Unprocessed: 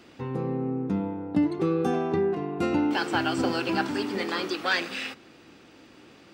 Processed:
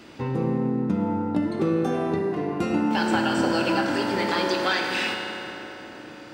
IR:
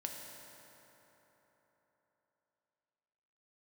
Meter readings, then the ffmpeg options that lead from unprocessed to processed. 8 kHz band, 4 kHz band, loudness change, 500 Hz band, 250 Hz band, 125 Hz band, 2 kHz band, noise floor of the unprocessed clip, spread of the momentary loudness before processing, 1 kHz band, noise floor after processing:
+4.5 dB, +4.0 dB, +3.0 dB, +2.5 dB, +3.0 dB, +3.5 dB, +3.0 dB, -53 dBFS, 7 LU, +4.0 dB, -42 dBFS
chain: -filter_complex "[0:a]acompressor=threshold=-27dB:ratio=6[a];[1:a]atrim=start_sample=2205[b];[a][b]afir=irnorm=-1:irlink=0,volume=8.5dB"

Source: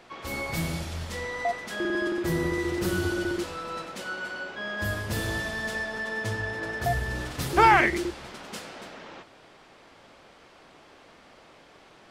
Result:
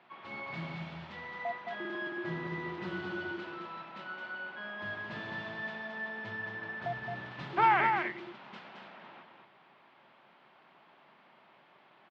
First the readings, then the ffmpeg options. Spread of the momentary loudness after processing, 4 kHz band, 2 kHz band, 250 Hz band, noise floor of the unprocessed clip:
18 LU, -11.0 dB, -7.0 dB, -11.0 dB, -54 dBFS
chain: -filter_complex "[0:a]acrusher=bits=5:mode=log:mix=0:aa=0.000001,highpass=f=140:w=0.5412,highpass=f=140:w=1.3066,equalizer=f=290:t=q:w=4:g=-7,equalizer=f=480:t=q:w=4:g=-9,equalizer=f=950:t=q:w=4:g=4,lowpass=f=3.4k:w=0.5412,lowpass=f=3.4k:w=1.3066,asplit=2[a][b];[b]aecho=0:1:219:0.562[c];[a][c]amix=inputs=2:normalize=0,volume=-8.5dB"

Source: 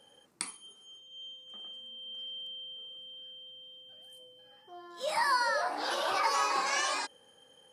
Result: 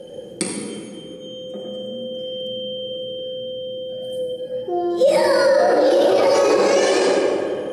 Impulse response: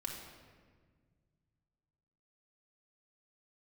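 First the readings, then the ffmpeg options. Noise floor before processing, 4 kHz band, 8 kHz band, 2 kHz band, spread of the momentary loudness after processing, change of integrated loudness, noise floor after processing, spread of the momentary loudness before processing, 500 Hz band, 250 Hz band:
-62 dBFS, +8.5 dB, +9.0 dB, +6.5 dB, 17 LU, +13.0 dB, -36 dBFS, 22 LU, +24.5 dB, +27.5 dB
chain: -filter_complex "[0:a]lowshelf=f=700:t=q:w=3:g=13[a];[1:a]atrim=start_sample=2205,asetrate=27783,aresample=44100[b];[a][b]afir=irnorm=-1:irlink=0,alimiter=level_in=19dB:limit=-1dB:release=50:level=0:latency=1,volume=-7dB"

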